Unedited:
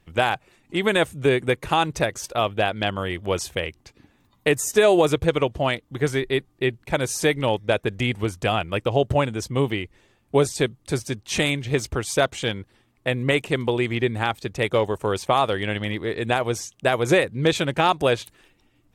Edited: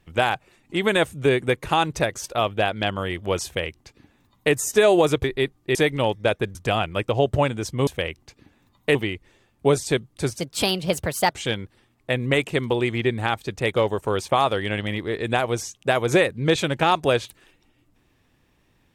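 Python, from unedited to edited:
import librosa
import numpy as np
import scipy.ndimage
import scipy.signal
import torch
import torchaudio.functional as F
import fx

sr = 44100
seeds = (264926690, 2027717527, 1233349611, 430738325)

y = fx.edit(x, sr, fx.duplicate(start_s=3.45, length_s=1.08, to_s=9.64),
    fx.cut(start_s=5.24, length_s=0.93),
    fx.cut(start_s=6.68, length_s=0.51),
    fx.cut(start_s=7.99, length_s=0.33),
    fx.speed_span(start_s=11.09, length_s=1.19, speed=1.31), tone=tone)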